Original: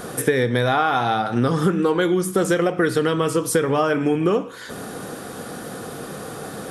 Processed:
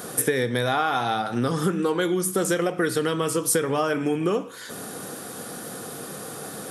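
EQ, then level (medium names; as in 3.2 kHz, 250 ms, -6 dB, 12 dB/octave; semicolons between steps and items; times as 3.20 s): high-pass 100 Hz; treble shelf 5.3 kHz +10 dB; -4.5 dB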